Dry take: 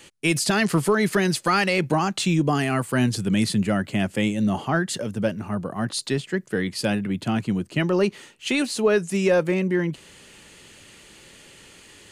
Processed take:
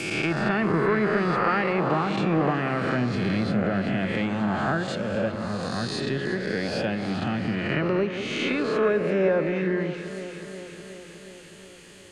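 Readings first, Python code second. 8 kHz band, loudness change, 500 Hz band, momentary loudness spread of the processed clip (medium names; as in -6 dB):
-14.0 dB, -2.0 dB, -1.0 dB, 14 LU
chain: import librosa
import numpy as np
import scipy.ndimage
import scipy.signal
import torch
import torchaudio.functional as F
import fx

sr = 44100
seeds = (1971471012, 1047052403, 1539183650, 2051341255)

y = fx.spec_swells(x, sr, rise_s=1.53)
y = fx.echo_alternate(y, sr, ms=183, hz=1300.0, feedback_pct=82, wet_db=-10.5)
y = fx.env_lowpass_down(y, sr, base_hz=1900.0, full_db=-14.0)
y = F.gain(torch.from_numpy(y), -5.5).numpy()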